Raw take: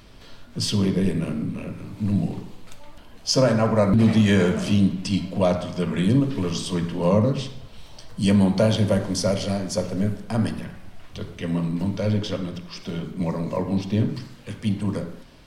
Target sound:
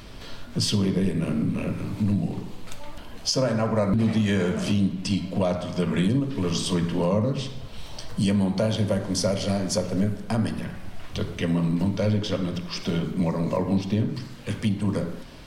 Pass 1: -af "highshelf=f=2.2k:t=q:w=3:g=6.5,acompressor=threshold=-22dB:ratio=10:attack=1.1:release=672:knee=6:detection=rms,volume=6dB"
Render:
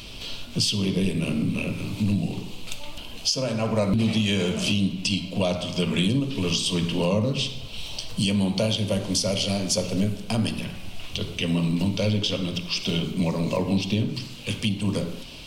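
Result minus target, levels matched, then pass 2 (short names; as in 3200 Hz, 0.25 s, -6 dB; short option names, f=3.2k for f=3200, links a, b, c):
4000 Hz band +6.0 dB
-af "acompressor=threshold=-22dB:ratio=10:attack=1.1:release=672:knee=6:detection=rms,volume=6dB"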